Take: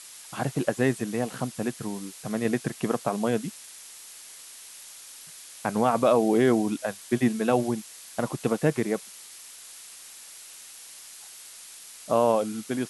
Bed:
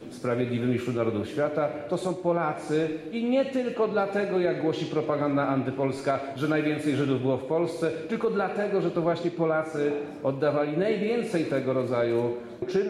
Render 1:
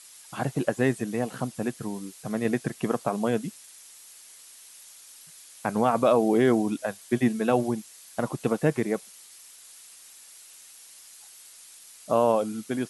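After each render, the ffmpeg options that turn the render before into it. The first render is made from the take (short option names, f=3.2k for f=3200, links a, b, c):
-af "afftdn=nr=6:nf=-46"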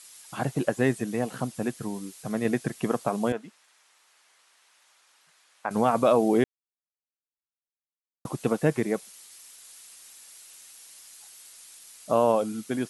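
-filter_complex "[0:a]asettb=1/sr,asplit=3[a][b][c];[a]atrim=end=3.324[d];[b]atrim=start=3.32:end=5.71,asetpts=PTS-STARTPTS,afade=t=in:d=0.004:c=qsin,afade=t=out:st=2.386:d=0.004:c=qsin,bandpass=f=1.1k:t=q:w=0.84[e];[c]atrim=start=5.706[f];[d][e]acrossfade=d=0.004:c1=hsin:c2=qsin[g];[g][f]acrossfade=d=0.004:c1=qsin:c2=hsin,asplit=3[h][i][j];[h]atrim=end=6.44,asetpts=PTS-STARTPTS,afade=t=out:st=6.436:d=0.004:c=hsin[k];[i]atrim=start=6.44:end=8.25,asetpts=PTS-STARTPTS,volume=0[l];[j]atrim=start=8.25,asetpts=PTS-STARTPTS,afade=t=in:d=0.004:c=hsin[m];[k][l][m]concat=n=3:v=0:a=1"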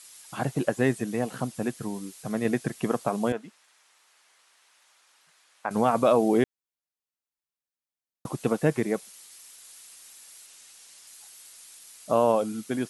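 -filter_complex "[0:a]asettb=1/sr,asplit=3[a][b][c];[a]atrim=end=10.464[d];[b]atrim=start=10.46:end=11.07,asetpts=PTS-STARTPTS,afade=t=in:d=0.004:c=qsin,afade=t=out:st=0.606:d=0.004:c=qsin,lowpass=9.7k[e];[c]atrim=start=11.066[f];[d][e]acrossfade=d=0.004:c1=hsin:c2=qsin[g];[g][f]acrossfade=d=0.004:c1=qsin:c2=hsin"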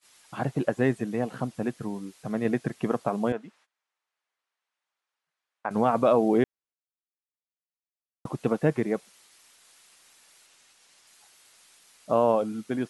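-af "lowpass=f=2.5k:p=1,agate=range=-21dB:threshold=-59dB:ratio=16:detection=peak"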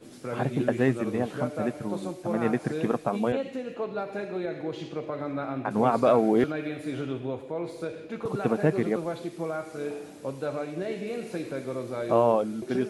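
-filter_complex "[1:a]volume=-7dB[a];[0:a][a]amix=inputs=2:normalize=0"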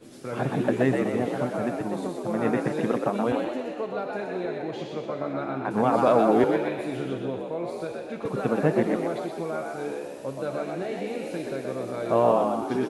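-filter_complex "[0:a]asplit=7[a][b][c][d][e][f][g];[b]adelay=124,afreqshift=64,volume=-4dB[h];[c]adelay=248,afreqshift=128,volume=-10.2dB[i];[d]adelay=372,afreqshift=192,volume=-16.4dB[j];[e]adelay=496,afreqshift=256,volume=-22.6dB[k];[f]adelay=620,afreqshift=320,volume=-28.8dB[l];[g]adelay=744,afreqshift=384,volume=-35dB[m];[a][h][i][j][k][l][m]amix=inputs=7:normalize=0"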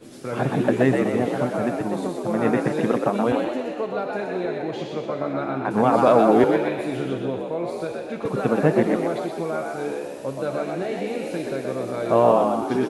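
-af "volume=4dB"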